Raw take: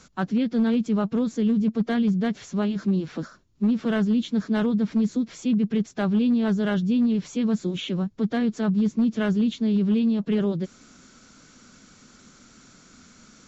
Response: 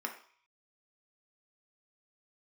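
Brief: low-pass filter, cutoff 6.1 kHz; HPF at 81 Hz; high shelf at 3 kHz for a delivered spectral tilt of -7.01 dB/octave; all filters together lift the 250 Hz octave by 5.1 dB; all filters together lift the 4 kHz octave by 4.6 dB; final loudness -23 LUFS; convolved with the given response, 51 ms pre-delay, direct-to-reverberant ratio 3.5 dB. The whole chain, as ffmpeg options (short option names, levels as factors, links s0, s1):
-filter_complex "[0:a]highpass=81,lowpass=6100,equalizer=f=250:t=o:g=6,highshelf=f=3000:g=3.5,equalizer=f=4000:t=o:g=4,asplit=2[s0][s1];[1:a]atrim=start_sample=2205,adelay=51[s2];[s1][s2]afir=irnorm=-1:irlink=0,volume=0.501[s3];[s0][s3]amix=inputs=2:normalize=0,volume=0.531"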